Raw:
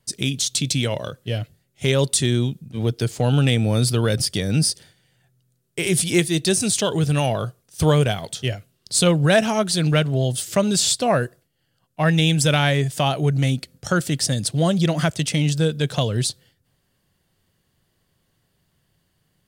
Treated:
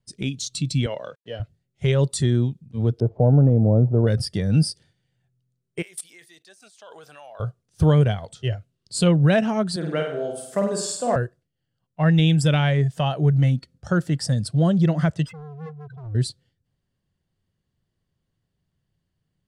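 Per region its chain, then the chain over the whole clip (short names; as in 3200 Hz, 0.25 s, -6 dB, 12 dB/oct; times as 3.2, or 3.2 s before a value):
0.86–1.4 sample gate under -47 dBFS + BPF 240–7300 Hz
3–4.07 block floating point 5-bit + de-esser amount 55% + synth low-pass 640 Hz, resonance Q 2.2
5.82–7.4 HPF 690 Hz + bell 14000 Hz +13 dB 0.2 oct + level quantiser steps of 19 dB
9.76–11.16 HPF 290 Hz + bell 3400 Hz -7 dB 1.4 oct + flutter echo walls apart 8.6 m, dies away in 0.77 s
15.26–16.15 spectral contrast raised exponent 4 + hard clip -31 dBFS
whole clip: spectral noise reduction 9 dB; LPF 7900 Hz 12 dB/oct; low shelf 310 Hz +9.5 dB; gain -5.5 dB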